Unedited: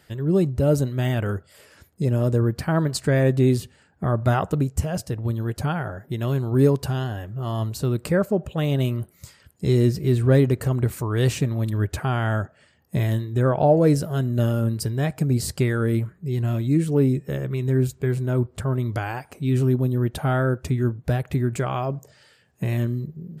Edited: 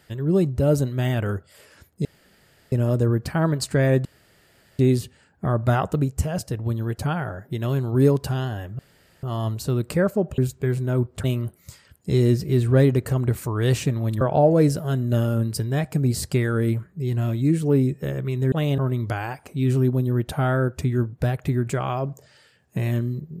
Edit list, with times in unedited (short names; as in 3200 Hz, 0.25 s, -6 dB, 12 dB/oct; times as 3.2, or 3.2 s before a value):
2.05 insert room tone 0.67 s
3.38 insert room tone 0.74 s
7.38 insert room tone 0.44 s
8.53–8.79 swap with 17.78–18.64
11.76–13.47 cut